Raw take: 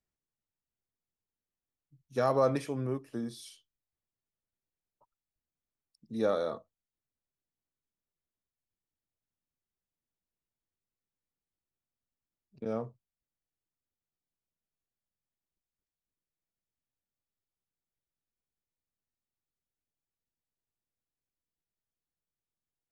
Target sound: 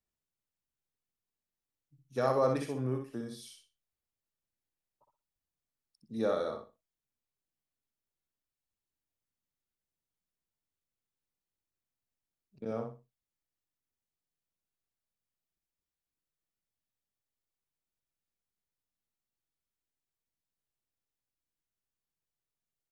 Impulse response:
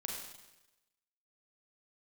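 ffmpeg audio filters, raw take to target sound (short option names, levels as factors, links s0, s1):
-af "aecho=1:1:62|124|186:0.562|0.129|0.0297,volume=0.75"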